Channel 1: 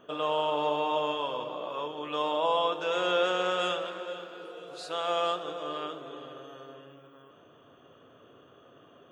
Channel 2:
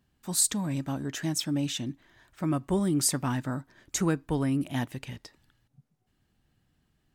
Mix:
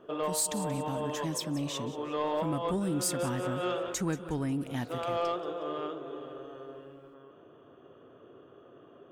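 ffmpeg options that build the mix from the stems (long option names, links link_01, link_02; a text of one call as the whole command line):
ffmpeg -i stem1.wav -i stem2.wav -filter_complex "[0:a]lowpass=frequency=1500:poles=1,equalizer=frequency=370:width_type=o:width=0.5:gain=7,volume=0dB[link_01];[1:a]volume=-4dB,asplit=3[link_02][link_03][link_04];[link_03]volume=-15.5dB[link_05];[link_04]apad=whole_len=402181[link_06];[link_01][link_06]sidechaincompress=threshold=-40dB:ratio=5:attack=11:release=151[link_07];[link_05]aecho=0:1:181|362|543|724|905:1|0.39|0.152|0.0593|0.0231[link_08];[link_07][link_02][link_08]amix=inputs=3:normalize=0,asoftclip=type=tanh:threshold=-21.5dB" out.wav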